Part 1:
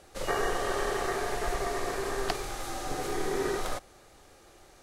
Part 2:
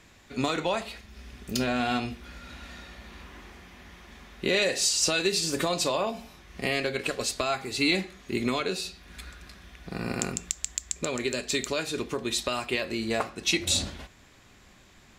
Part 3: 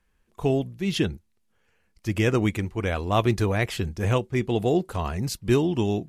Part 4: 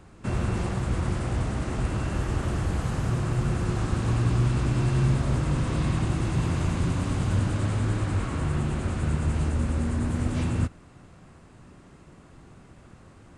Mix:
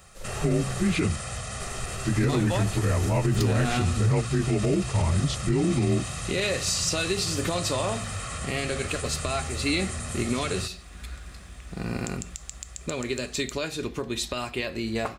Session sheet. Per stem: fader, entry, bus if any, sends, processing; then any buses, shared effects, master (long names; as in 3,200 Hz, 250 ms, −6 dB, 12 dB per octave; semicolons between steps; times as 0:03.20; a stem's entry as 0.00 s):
−12.5 dB, 0.00 s, muted 0:00.96–0:01.60, no send, high-shelf EQ 4,300 Hz +7.5 dB
−1.5 dB, 1.85 s, no send, no processing
+1.5 dB, 0.00 s, no send, partials spread apart or drawn together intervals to 89%
−2.5 dB, 0.00 s, no send, spectral tilt +4.5 dB per octave; comb filter 1.6 ms, depth 88%; brickwall limiter −24 dBFS, peak gain reduction 7 dB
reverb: not used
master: low-shelf EQ 140 Hz +10.5 dB; brickwall limiter −15 dBFS, peak gain reduction 9.5 dB